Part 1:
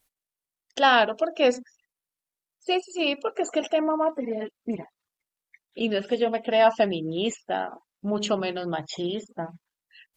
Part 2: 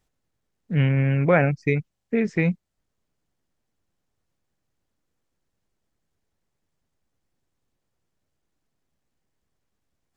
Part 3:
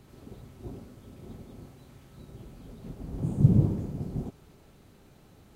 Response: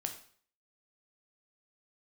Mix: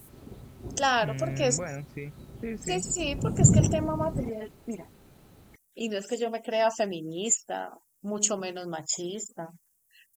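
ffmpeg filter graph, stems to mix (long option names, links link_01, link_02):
-filter_complex "[0:a]aexciter=amount=13.5:drive=6.5:freq=5900,volume=-6dB[link_01];[1:a]alimiter=limit=-15dB:level=0:latency=1:release=260,adelay=300,volume=-10.5dB[link_02];[2:a]volume=1dB[link_03];[link_01][link_02][link_03]amix=inputs=3:normalize=0"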